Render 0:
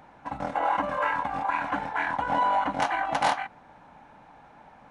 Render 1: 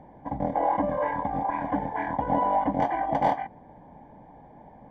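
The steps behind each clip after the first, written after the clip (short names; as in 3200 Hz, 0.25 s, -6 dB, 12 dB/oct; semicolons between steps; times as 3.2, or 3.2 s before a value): running mean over 33 samples; gain +7.5 dB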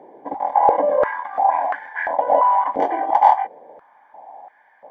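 stepped high-pass 2.9 Hz 400–1600 Hz; gain +2.5 dB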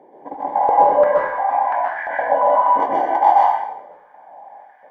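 plate-style reverb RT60 0.74 s, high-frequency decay 0.95×, pre-delay 0.115 s, DRR -4 dB; gain -4 dB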